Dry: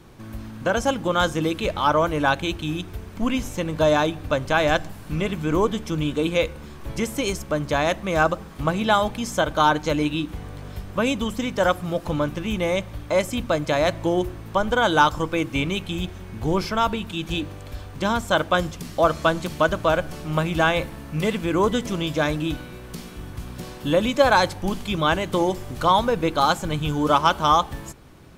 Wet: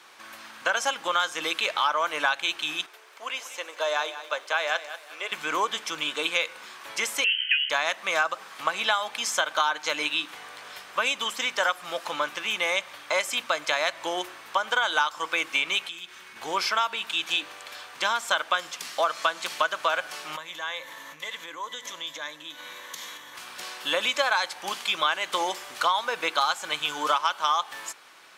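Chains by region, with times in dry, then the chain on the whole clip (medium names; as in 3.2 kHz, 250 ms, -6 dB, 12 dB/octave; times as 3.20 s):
2.86–5.32 s: ladder high-pass 340 Hz, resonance 35% + bit-crushed delay 189 ms, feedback 35%, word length 9-bit, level -13.5 dB
7.24–7.70 s: frequency inversion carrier 3.1 kHz + brick-wall FIR band-stop 520–1400 Hz
15.88–16.36 s: peaking EQ 690 Hz -9.5 dB 0.71 oct + compression 4:1, threshold -35 dBFS
20.36–23.35 s: rippled EQ curve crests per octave 1.1, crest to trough 9 dB + compression 5:1, threshold -33 dBFS
whole clip: high-pass 1.2 kHz 12 dB/octave; treble shelf 11 kHz -11.5 dB; compression 6:1, threshold -28 dBFS; trim +7.5 dB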